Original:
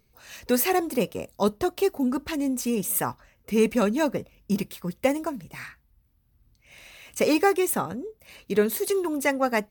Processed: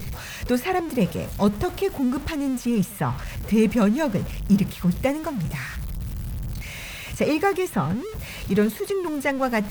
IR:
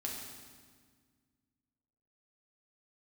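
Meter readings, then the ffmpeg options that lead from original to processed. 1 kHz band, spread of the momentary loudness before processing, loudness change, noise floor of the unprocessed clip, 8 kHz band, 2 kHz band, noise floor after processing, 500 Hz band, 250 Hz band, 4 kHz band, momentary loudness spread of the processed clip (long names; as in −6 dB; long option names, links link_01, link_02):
+0.5 dB, 15 LU, +1.0 dB, −65 dBFS, −5.5 dB, +1.5 dB, −36 dBFS, −0.5 dB, +4.0 dB, +1.0 dB, 12 LU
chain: -filter_complex "[0:a]aeval=exprs='val(0)+0.5*0.0266*sgn(val(0))':channel_layout=same,lowshelf=frequency=220:width_type=q:width=1.5:gain=8,acrossover=split=3600[link_01][link_02];[link_02]acompressor=threshold=-39dB:ratio=6[link_03];[link_01][link_03]amix=inputs=2:normalize=0"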